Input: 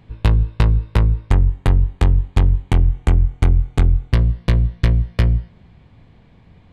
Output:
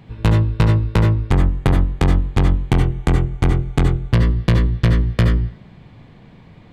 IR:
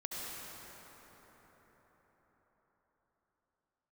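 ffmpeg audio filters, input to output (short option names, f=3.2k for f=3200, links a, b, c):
-filter_complex "[0:a]lowshelf=f=100:t=q:w=1.5:g=-6.5,acontrast=77[a];[1:a]atrim=start_sample=2205,atrim=end_sample=4410[b];[a][b]afir=irnorm=-1:irlink=0,volume=2.5dB"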